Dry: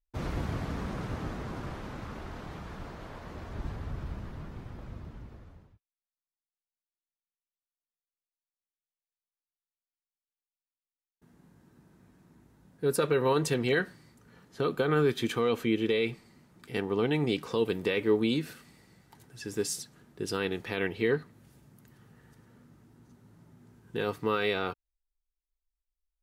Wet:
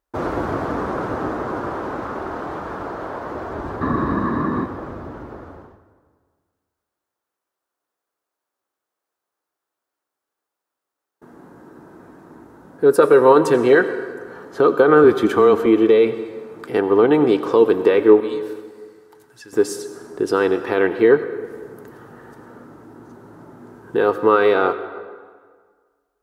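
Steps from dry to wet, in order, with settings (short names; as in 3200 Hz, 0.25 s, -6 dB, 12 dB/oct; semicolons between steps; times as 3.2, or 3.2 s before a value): HPF 58 Hz; band shelf 660 Hz +13.5 dB 2.9 oct; 15.04–15.66 frequency shift -20 Hz; in parallel at +2.5 dB: compressor, threshold -41 dBFS, peak gain reduction 30 dB; 3.81–4.66 on the sum: small resonant body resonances 220/1100/1700/3800 Hz, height 16 dB, ringing for 20 ms; 18.2–19.53 passive tone stack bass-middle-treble 5-5-5; on a send at -11.5 dB: reverb RT60 1.7 s, pre-delay 77 ms; on the sum: gain +1 dB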